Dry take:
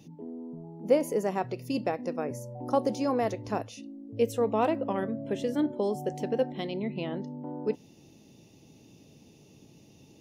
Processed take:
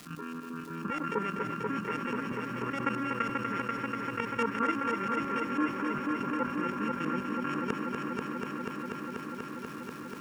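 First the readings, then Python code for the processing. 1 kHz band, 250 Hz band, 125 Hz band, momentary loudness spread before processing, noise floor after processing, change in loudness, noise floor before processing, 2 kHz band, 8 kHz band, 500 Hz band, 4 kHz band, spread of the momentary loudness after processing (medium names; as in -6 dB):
+2.0 dB, -1.0 dB, -2.0 dB, 14 LU, -42 dBFS, -2.5 dB, -56 dBFS, +9.0 dB, -6.0 dB, -8.5 dB, -0.5 dB, 9 LU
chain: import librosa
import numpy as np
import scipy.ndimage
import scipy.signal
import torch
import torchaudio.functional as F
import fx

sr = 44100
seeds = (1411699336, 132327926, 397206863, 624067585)

y = np.r_[np.sort(x[:len(x) // 32 * 32].reshape(-1, 32), axis=1).ravel(), x[len(x) // 32 * 32:]]
y = scipy.signal.sosfilt(scipy.signal.butter(2, 190.0, 'highpass', fs=sr, output='sos'), y)
y = fx.level_steps(y, sr, step_db=13)
y = fx.step_gate(y, sr, bpm=150, pattern='.xxx.x.xx', floor_db=-12.0, edge_ms=4.5)
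y = fx.fixed_phaser(y, sr, hz=1700.0, stages=4)
y = fx.filter_lfo_lowpass(y, sr, shape='saw_up', hz=6.1, low_hz=770.0, high_hz=4800.0, q=1.3)
y = fx.dmg_crackle(y, sr, seeds[0], per_s=500.0, level_db=-60.0)
y = fx.echo_heads(y, sr, ms=243, heads='first and second', feedback_pct=74, wet_db=-9.0)
y = fx.env_flatten(y, sr, amount_pct=50)
y = y * 10.0 ** (1.5 / 20.0)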